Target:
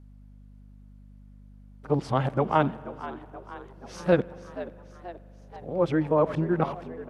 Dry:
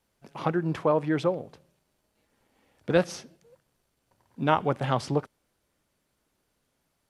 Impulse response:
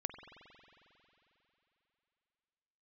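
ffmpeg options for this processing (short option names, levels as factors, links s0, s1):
-filter_complex "[0:a]areverse,highshelf=f=2500:g=-10,asplit=6[s0][s1][s2][s3][s4][s5];[s1]adelay=480,afreqshift=87,volume=0.178[s6];[s2]adelay=960,afreqshift=174,volume=0.1[s7];[s3]adelay=1440,afreqshift=261,volume=0.0556[s8];[s4]adelay=1920,afreqshift=348,volume=0.0313[s9];[s5]adelay=2400,afreqshift=435,volume=0.0176[s10];[s0][s6][s7][s8][s9][s10]amix=inputs=6:normalize=0,aeval=exprs='val(0)+0.00316*(sin(2*PI*50*n/s)+sin(2*PI*2*50*n/s)/2+sin(2*PI*3*50*n/s)/3+sin(2*PI*4*50*n/s)/4+sin(2*PI*5*50*n/s)/5)':c=same,asplit=2[s11][s12];[1:a]atrim=start_sample=2205[s13];[s12][s13]afir=irnorm=-1:irlink=0,volume=0.266[s14];[s11][s14]amix=inputs=2:normalize=0"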